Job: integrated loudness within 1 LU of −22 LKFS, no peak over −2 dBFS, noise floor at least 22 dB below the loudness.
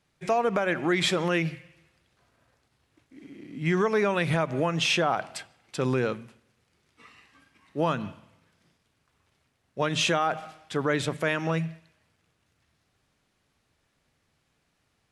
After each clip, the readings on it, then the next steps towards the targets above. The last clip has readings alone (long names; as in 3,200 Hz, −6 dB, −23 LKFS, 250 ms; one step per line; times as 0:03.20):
integrated loudness −27.0 LKFS; sample peak −12.0 dBFS; target loudness −22.0 LKFS
→ level +5 dB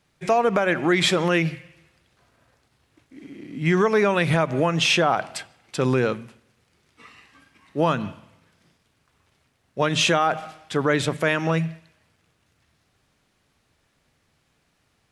integrated loudness −22.0 LKFS; sample peak −7.0 dBFS; background noise floor −68 dBFS